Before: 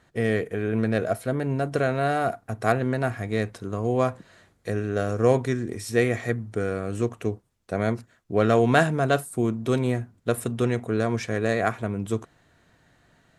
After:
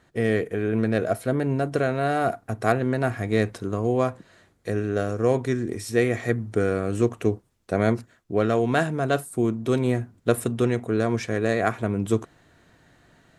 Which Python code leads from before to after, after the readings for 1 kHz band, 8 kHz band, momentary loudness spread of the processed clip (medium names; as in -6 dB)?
-0.5 dB, +0.5 dB, 4 LU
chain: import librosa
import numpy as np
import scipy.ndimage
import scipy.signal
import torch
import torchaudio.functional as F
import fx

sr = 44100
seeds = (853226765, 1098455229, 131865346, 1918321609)

y = fx.peak_eq(x, sr, hz=330.0, db=3.0, octaves=0.77)
y = fx.rider(y, sr, range_db=4, speed_s=0.5)